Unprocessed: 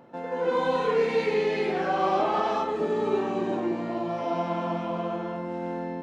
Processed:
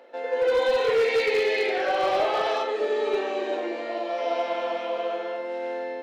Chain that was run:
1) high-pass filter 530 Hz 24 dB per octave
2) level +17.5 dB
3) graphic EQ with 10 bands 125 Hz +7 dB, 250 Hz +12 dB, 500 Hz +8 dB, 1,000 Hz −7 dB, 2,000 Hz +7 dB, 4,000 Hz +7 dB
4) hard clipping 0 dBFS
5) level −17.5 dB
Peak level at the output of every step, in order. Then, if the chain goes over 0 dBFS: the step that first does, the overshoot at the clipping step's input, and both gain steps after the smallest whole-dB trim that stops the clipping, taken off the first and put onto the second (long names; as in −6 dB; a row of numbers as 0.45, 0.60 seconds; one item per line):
−14.5, +3.0, +7.5, 0.0, −17.5 dBFS
step 2, 7.5 dB
step 2 +9.5 dB, step 5 −9.5 dB